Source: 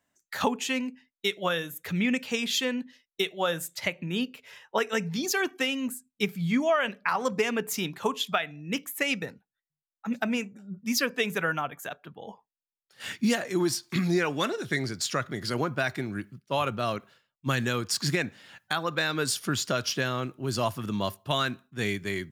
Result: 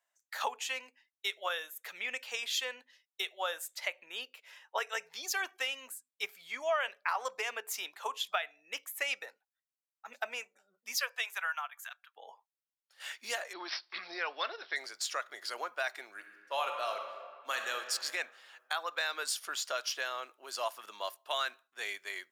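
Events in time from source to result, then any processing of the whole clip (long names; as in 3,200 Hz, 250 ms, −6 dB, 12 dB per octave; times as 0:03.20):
0:10.96–0:12.15: high-pass filter 520 Hz → 1,400 Hz 24 dB per octave
0:13.53–0:14.76: bad sample-rate conversion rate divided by 4×, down none, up filtered
0:16.13–0:17.75: thrown reverb, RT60 1.9 s, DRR 4 dB
whole clip: high-pass filter 590 Hz 24 dB per octave; level −5.5 dB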